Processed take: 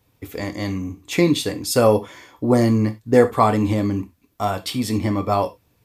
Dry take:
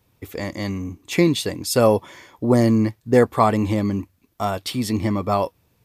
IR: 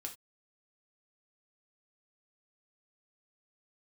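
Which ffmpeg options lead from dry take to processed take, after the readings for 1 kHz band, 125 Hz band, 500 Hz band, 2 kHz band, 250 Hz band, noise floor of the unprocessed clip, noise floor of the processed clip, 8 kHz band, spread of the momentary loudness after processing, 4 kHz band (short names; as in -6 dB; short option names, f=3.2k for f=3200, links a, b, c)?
+1.0 dB, +0.5 dB, +1.0 dB, +0.5 dB, +0.5 dB, -65 dBFS, -64 dBFS, +0.5 dB, 12 LU, +0.5 dB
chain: -filter_complex "[0:a]asplit=2[a][b];[1:a]atrim=start_sample=2205,asetrate=43659,aresample=44100[c];[b][c]afir=irnorm=-1:irlink=0,volume=5dB[d];[a][d]amix=inputs=2:normalize=0,volume=-6dB"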